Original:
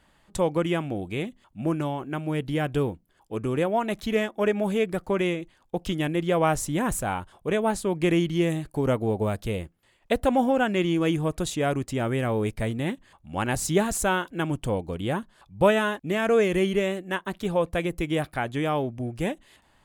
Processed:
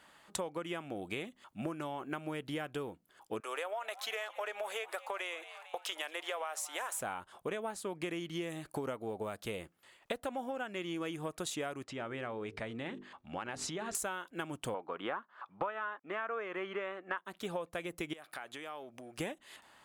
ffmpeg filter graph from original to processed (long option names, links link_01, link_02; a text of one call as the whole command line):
ffmpeg -i in.wav -filter_complex "[0:a]asettb=1/sr,asplit=3[link_01][link_02][link_03];[link_01]atrim=end=3.404[link_04];[link_02]atrim=start=3.4:end=7.01,asetpts=PTS-STARTPTS,afade=type=in:duration=0.004:curve=qsin,afade=type=out:start_time=3.606:duration=0.004:curve=qsin,highpass=frequency=560:width=0.5412,highpass=frequency=560:width=1.3066,acompressor=threshold=-28dB:ratio=3:attack=3.2:release=140:knee=1:detection=peak,asplit=6[link_05][link_06][link_07][link_08][link_09][link_10];[link_06]adelay=225,afreqshift=100,volume=-20dB[link_11];[link_07]adelay=450,afreqshift=200,volume=-24.6dB[link_12];[link_08]adelay=675,afreqshift=300,volume=-29.2dB[link_13];[link_09]adelay=900,afreqshift=400,volume=-33.7dB[link_14];[link_10]adelay=1125,afreqshift=500,volume=-38.3dB[link_15];[link_05][link_11][link_12][link_13][link_14][link_15]amix=inputs=6:normalize=0,atrim=end_sample=159201[link_16];[link_03]atrim=start=7.006[link_17];[link_04][link_16]acrossfade=duration=0.004:curve1=hsin:curve2=qsin[link_18];[link_18][link_17]acrossfade=duration=0.004:curve1=qsin:curve2=hsin,asettb=1/sr,asplit=3[link_19][link_20][link_21];[link_19]atrim=end=11.844[link_22];[link_20]atrim=start=11.84:end=13.95,asetpts=PTS-STARTPTS,afade=type=in:duration=0.004:curve=qsin,afade=type=out:start_time=2.106:duration=0.004:curve=qsin,lowpass=4300,bandreject=frequency=50:width_type=h:width=6,bandreject=frequency=100:width_type=h:width=6,bandreject=frequency=150:width_type=h:width=6,bandreject=frequency=200:width_type=h:width=6,bandreject=frequency=250:width_type=h:width=6,bandreject=frequency=300:width_type=h:width=6,bandreject=frequency=350:width_type=h:width=6,bandreject=frequency=400:width_type=h:width=6,bandreject=frequency=450:width_type=h:width=6,acompressor=threshold=-33dB:ratio=6:attack=3.2:release=140:knee=1:detection=peak[link_23];[link_21]atrim=start=13.946[link_24];[link_22][link_23]acrossfade=duration=0.004:curve1=hsin:curve2=qsin[link_25];[link_25][link_24]acrossfade=duration=0.004:curve1=qsin:curve2=hsin,asettb=1/sr,asplit=3[link_26][link_27][link_28];[link_26]atrim=end=14.744[link_29];[link_27]atrim=start=14.74:end=17.18,asetpts=PTS-STARTPTS,afade=type=in:duration=0.004:curve=qsin,afade=type=out:start_time=2.436:duration=0.004:curve=qsin,highpass=260,lowpass=2600,equalizer=frequency=1200:width_type=o:width=1.2:gain=12.5[link_30];[link_28]atrim=start=17.176[link_31];[link_29][link_30]acrossfade=duration=0.004:curve1=hsin:curve2=qsin[link_32];[link_32][link_31]acrossfade=duration=0.004:curve1=qsin:curve2=hsin,asettb=1/sr,asplit=3[link_33][link_34][link_35];[link_33]atrim=end=18.134[link_36];[link_34]atrim=start=18.13:end=19.18,asetpts=PTS-STARTPTS,afade=type=in:duration=0.004:curve=qsin,afade=type=out:start_time=1.046:duration=0.004:curve=qsin,highpass=frequency=530:poles=1,acompressor=threshold=-44dB:ratio=5:attack=3.2:release=140:knee=1:detection=peak[link_37];[link_35]atrim=start=19.176[link_38];[link_36][link_37]acrossfade=duration=0.004:curve1=hsin:curve2=qsin[link_39];[link_39][link_38]acrossfade=duration=0.004:curve1=qsin:curve2=hsin,highpass=frequency=500:poles=1,equalizer=frequency=1300:width=3.9:gain=3.5,acompressor=threshold=-38dB:ratio=12,volume=3dB" out.wav